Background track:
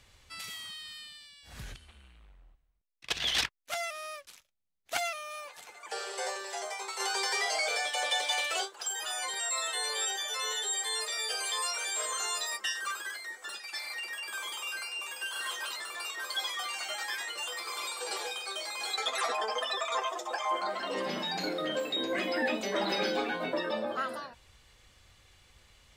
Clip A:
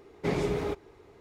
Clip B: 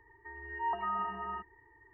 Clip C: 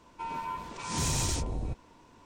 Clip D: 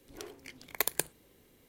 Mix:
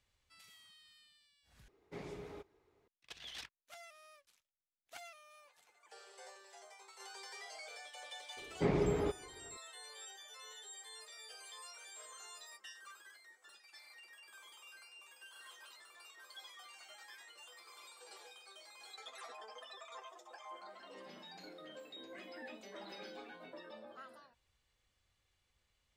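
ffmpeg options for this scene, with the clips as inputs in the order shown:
ffmpeg -i bed.wav -i cue0.wav -filter_complex "[1:a]asplit=2[link_01][link_02];[0:a]volume=-19.5dB[link_03];[link_01]lowshelf=frequency=390:gain=-3.5[link_04];[link_02]lowpass=frequency=1900:poles=1[link_05];[link_03]asplit=2[link_06][link_07];[link_06]atrim=end=1.684[link_08];[link_04]atrim=end=1.2,asetpts=PTS-STARTPTS,volume=-17dB[link_09];[link_07]atrim=start=2.876[link_10];[link_05]atrim=end=1.2,asetpts=PTS-STARTPTS,volume=-3dB,afade=type=in:duration=0.004:curve=hsin,afade=type=out:start_time=1.196:duration=0.004:curve=hsin,adelay=8370[link_11];[link_08][link_09]acrossfade=duration=0.004:curve1=hsin:curve2=hsin[link_12];[link_12][link_10]acrossfade=duration=0.004:curve1=hsin:curve2=hsin[link_13];[link_13][link_11]amix=inputs=2:normalize=0" out.wav

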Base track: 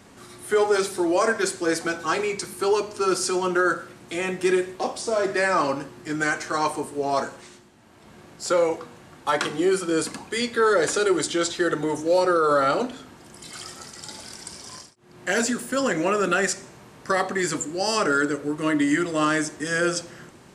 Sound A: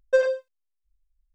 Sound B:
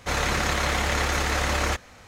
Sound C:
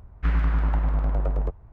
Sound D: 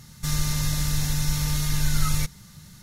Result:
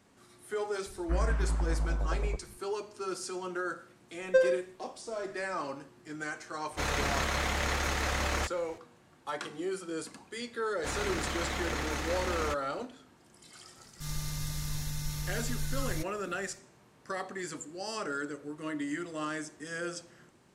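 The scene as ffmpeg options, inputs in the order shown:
ffmpeg -i bed.wav -i cue0.wav -i cue1.wav -i cue2.wav -i cue3.wav -filter_complex "[2:a]asplit=2[link_01][link_02];[0:a]volume=-14dB[link_03];[3:a]acrossover=split=2100[link_04][link_05];[link_05]adelay=180[link_06];[link_04][link_06]amix=inputs=2:normalize=0[link_07];[link_02]equalizer=frequency=260:width_type=o:width=0.77:gain=4[link_08];[4:a]dynaudnorm=framelen=170:gausssize=3:maxgain=6dB[link_09];[link_07]atrim=end=1.72,asetpts=PTS-STARTPTS,volume=-7.5dB,afade=type=in:duration=0.004:curve=hsin,afade=type=out:start_time=1.716:duration=0.004:curve=hsin,adelay=860[link_10];[1:a]atrim=end=1.34,asetpts=PTS-STARTPTS,volume=-4dB,afade=type=in:duration=0.004:curve=hsin,afade=type=out:start_time=1.336:duration=0.004:curve=hsin,adelay=185661S[link_11];[link_01]atrim=end=2.07,asetpts=PTS-STARTPTS,volume=-6.5dB,afade=type=in:duration=0.004:curve=hsin,afade=type=out:start_time=2.066:duration=0.004:curve=hsin,adelay=6710[link_12];[link_08]atrim=end=2.07,asetpts=PTS-STARTPTS,volume=-10.5dB,afade=type=in:duration=0.004:curve=hsin,afade=type=out:start_time=2.066:duration=0.004:curve=hsin,adelay=10780[link_13];[link_09]atrim=end=2.82,asetpts=PTS-STARTPTS,volume=-17dB,afade=type=in:duration=0.004:curve=hsin,afade=type=out:start_time=2.816:duration=0.004:curve=hsin,adelay=13770[link_14];[link_03][link_10][link_11][link_12][link_13][link_14]amix=inputs=6:normalize=0" out.wav

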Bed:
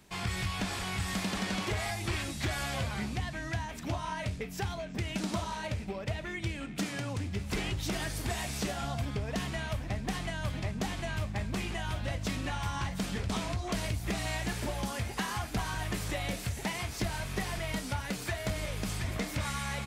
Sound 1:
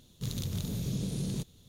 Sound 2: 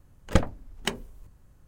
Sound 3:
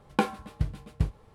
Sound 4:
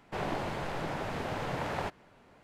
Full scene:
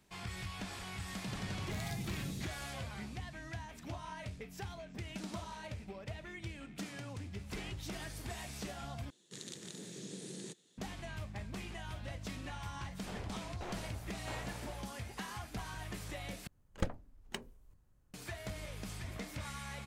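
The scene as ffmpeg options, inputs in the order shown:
ffmpeg -i bed.wav -i cue0.wav -i cue1.wav -i cue2.wav -i cue3.wav -filter_complex "[1:a]asplit=2[link_01][link_02];[0:a]volume=-9.5dB[link_03];[link_01]acrossover=split=590[link_04][link_05];[link_05]adelay=440[link_06];[link_04][link_06]amix=inputs=2:normalize=0[link_07];[link_02]highpass=frequency=210:width=0.5412,highpass=frequency=210:width=1.3066,equalizer=frequency=240:width_type=q:width=4:gain=-7,equalizer=frequency=360:width_type=q:width=4:gain=5,equalizer=frequency=640:width_type=q:width=4:gain=-4,equalizer=frequency=1100:width_type=q:width=4:gain=-3,equalizer=frequency=1800:width_type=q:width=4:gain=10,equalizer=frequency=7900:width_type=q:width=4:gain=10,lowpass=frequency=9800:width=0.5412,lowpass=frequency=9800:width=1.3066[link_08];[4:a]aeval=exprs='val(0)*pow(10,-21*if(lt(mod(1.5*n/s,1),2*abs(1.5)/1000),1-mod(1.5*n/s,1)/(2*abs(1.5)/1000),(mod(1.5*n/s,1)-2*abs(1.5)/1000)/(1-2*abs(1.5)/1000))/20)':channel_layout=same[link_09];[link_03]asplit=3[link_10][link_11][link_12];[link_10]atrim=end=9.104[link_13];[link_08]atrim=end=1.68,asetpts=PTS-STARTPTS,volume=-6.5dB[link_14];[link_11]atrim=start=10.776:end=16.474[link_15];[2:a]atrim=end=1.67,asetpts=PTS-STARTPTS,volume=-13.5dB[link_16];[link_12]atrim=start=18.136[link_17];[link_07]atrim=end=1.68,asetpts=PTS-STARTPTS,volume=-8.5dB,afade=type=in:duration=0.004:curve=hsin,afade=type=out:start_time=1.676:duration=0.004:curve=hsin,adelay=1050[link_18];[link_09]atrim=end=2.43,asetpts=PTS-STARTPTS,volume=-7dB,afade=type=in:duration=0.004:curve=hsin,afade=type=out:start_time=2.426:duration=0.004:curve=hsin,adelay=12940[link_19];[link_13][link_14]acrossfade=duration=0.004:curve1=hsin:curve2=hsin[link_20];[link_20][link_15]acrossfade=duration=0.004:curve1=hsin:curve2=hsin[link_21];[link_21][link_16]acrossfade=duration=0.004:curve1=hsin:curve2=hsin[link_22];[link_22][link_17]acrossfade=duration=0.004:curve1=hsin:curve2=hsin[link_23];[link_23][link_18][link_19]amix=inputs=3:normalize=0" out.wav

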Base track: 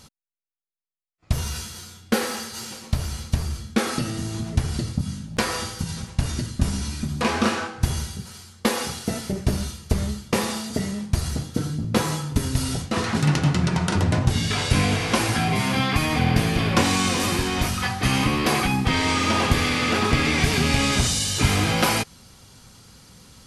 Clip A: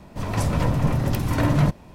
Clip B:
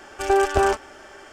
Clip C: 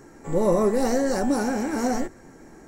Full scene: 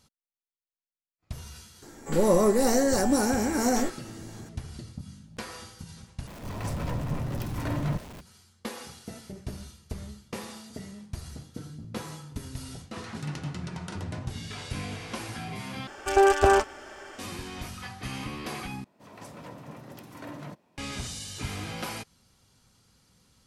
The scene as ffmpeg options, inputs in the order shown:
ffmpeg -i bed.wav -i cue0.wav -i cue1.wav -i cue2.wav -filter_complex "[1:a]asplit=2[link_01][link_02];[0:a]volume=-15dB[link_03];[3:a]aemphasis=mode=production:type=cd[link_04];[link_01]aeval=exprs='val(0)+0.5*0.0376*sgn(val(0))':channel_layout=same[link_05];[link_02]highpass=220[link_06];[link_03]asplit=4[link_07][link_08][link_09][link_10];[link_07]atrim=end=6.274[link_11];[link_05]atrim=end=1.94,asetpts=PTS-STARTPTS,volume=-11dB[link_12];[link_08]atrim=start=8.206:end=15.874[link_13];[2:a]atrim=end=1.32,asetpts=PTS-STARTPTS,volume=-0.5dB[link_14];[link_09]atrim=start=17.186:end=18.844[link_15];[link_06]atrim=end=1.94,asetpts=PTS-STARTPTS,volume=-17dB[link_16];[link_10]atrim=start=20.776[link_17];[link_04]atrim=end=2.67,asetpts=PTS-STARTPTS,volume=-0.5dB,afade=type=in:duration=0.004:curve=hsin,afade=type=out:start_time=2.666:duration=0.004:curve=hsin,adelay=1820[link_18];[link_11][link_12]acrossfade=duration=0.004:curve1=hsin:curve2=hsin[link_19];[link_19][link_13]acrossfade=duration=0.004:curve1=hsin:curve2=hsin[link_20];[link_20][link_14]acrossfade=duration=0.004:curve1=hsin:curve2=hsin[link_21];[link_21][link_15]acrossfade=duration=0.004:curve1=hsin:curve2=hsin[link_22];[link_22][link_16]acrossfade=duration=0.004:curve1=hsin:curve2=hsin[link_23];[link_23][link_17]acrossfade=duration=0.004:curve1=hsin:curve2=hsin[link_24];[link_24][link_18]amix=inputs=2:normalize=0" out.wav

